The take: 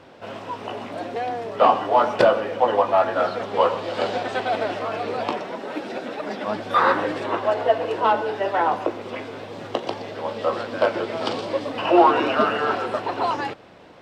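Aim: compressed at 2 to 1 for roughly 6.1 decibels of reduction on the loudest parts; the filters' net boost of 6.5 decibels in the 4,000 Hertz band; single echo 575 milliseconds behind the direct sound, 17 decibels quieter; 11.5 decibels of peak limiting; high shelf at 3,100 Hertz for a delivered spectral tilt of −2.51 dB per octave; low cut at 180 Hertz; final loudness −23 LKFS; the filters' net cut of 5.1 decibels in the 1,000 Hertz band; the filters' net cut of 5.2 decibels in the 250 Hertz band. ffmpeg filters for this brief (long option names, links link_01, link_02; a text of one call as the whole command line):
ffmpeg -i in.wav -af "highpass=180,equalizer=frequency=250:width_type=o:gain=-6.5,equalizer=frequency=1000:width_type=o:gain=-7.5,highshelf=frequency=3100:gain=7.5,equalizer=frequency=4000:width_type=o:gain=4,acompressor=threshold=-25dB:ratio=2,alimiter=limit=-20dB:level=0:latency=1,aecho=1:1:575:0.141,volume=7.5dB" out.wav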